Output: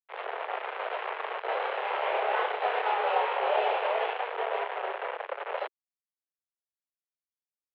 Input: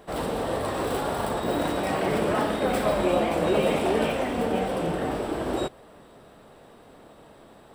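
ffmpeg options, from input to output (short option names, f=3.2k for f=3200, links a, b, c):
-filter_complex "[0:a]acrusher=bits=3:mix=0:aa=0.5,asettb=1/sr,asplit=3[a][b][c];[a]atrim=end=1.464[d];[b]atrim=start=1.46:end=3.87,asetpts=PTS-STARTPTS,afade=t=in:d=0.004:c=qsin,afade=t=out:st=2.406:d=0.004:c=qsin,asplit=2[e][f];[f]adelay=29,volume=-5dB[g];[e][g]amix=inputs=2:normalize=0,atrim=end_sample=106281[h];[c]atrim=start=3.866[i];[d][h]acrossfade=d=0.004:c1=hsin:c2=qsin[j];[j][i]acrossfade=d=0.004:c1=qsin:c2=hsin,highpass=f=190:t=q:w=0.5412,highpass=f=190:t=q:w=1.307,lowpass=f=2.9k:t=q:w=0.5176,lowpass=f=2.9k:t=q:w=0.7071,lowpass=f=2.9k:t=q:w=1.932,afreqshift=220,volume=-5dB"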